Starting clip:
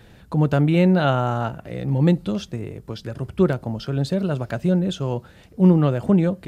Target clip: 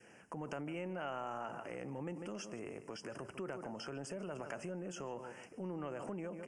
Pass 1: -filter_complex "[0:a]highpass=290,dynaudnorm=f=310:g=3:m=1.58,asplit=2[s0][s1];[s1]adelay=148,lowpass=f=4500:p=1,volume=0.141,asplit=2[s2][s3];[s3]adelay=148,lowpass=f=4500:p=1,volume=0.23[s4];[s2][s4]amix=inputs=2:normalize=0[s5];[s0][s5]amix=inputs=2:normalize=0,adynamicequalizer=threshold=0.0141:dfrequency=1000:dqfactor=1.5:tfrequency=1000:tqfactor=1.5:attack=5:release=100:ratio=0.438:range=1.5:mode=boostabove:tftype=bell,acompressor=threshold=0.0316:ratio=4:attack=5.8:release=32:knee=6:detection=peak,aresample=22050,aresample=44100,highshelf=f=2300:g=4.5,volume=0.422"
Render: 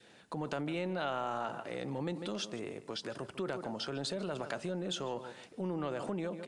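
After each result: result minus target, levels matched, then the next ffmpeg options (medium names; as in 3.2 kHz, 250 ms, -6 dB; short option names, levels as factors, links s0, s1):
4 kHz band +6.5 dB; compression: peak gain reduction -6 dB
-filter_complex "[0:a]highpass=290,dynaudnorm=f=310:g=3:m=1.58,asplit=2[s0][s1];[s1]adelay=148,lowpass=f=4500:p=1,volume=0.141,asplit=2[s2][s3];[s3]adelay=148,lowpass=f=4500:p=1,volume=0.23[s4];[s2][s4]amix=inputs=2:normalize=0[s5];[s0][s5]amix=inputs=2:normalize=0,adynamicequalizer=threshold=0.0141:dfrequency=1000:dqfactor=1.5:tfrequency=1000:tqfactor=1.5:attack=5:release=100:ratio=0.438:range=1.5:mode=boostabove:tftype=bell,acompressor=threshold=0.0316:ratio=4:attack=5.8:release=32:knee=6:detection=peak,aresample=22050,aresample=44100,asuperstop=centerf=3900:order=8:qfactor=1.9,highshelf=f=2300:g=4.5,volume=0.422"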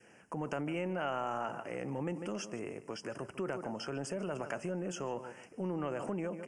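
compression: peak gain reduction -6 dB
-filter_complex "[0:a]highpass=290,dynaudnorm=f=310:g=3:m=1.58,asplit=2[s0][s1];[s1]adelay=148,lowpass=f=4500:p=1,volume=0.141,asplit=2[s2][s3];[s3]adelay=148,lowpass=f=4500:p=1,volume=0.23[s4];[s2][s4]amix=inputs=2:normalize=0[s5];[s0][s5]amix=inputs=2:normalize=0,adynamicequalizer=threshold=0.0141:dfrequency=1000:dqfactor=1.5:tfrequency=1000:tqfactor=1.5:attack=5:release=100:ratio=0.438:range=1.5:mode=boostabove:tftype=bell,acompressor=threshold=0.0126:ratio=4:attack=5.8:release=32:knee=6:detection=peak,aresample=22050,aresample=44100,asuperstop=centerf=3900:order=8:qfactor=1.9,highshelf=f=2300:g=4.5,volume=0.422"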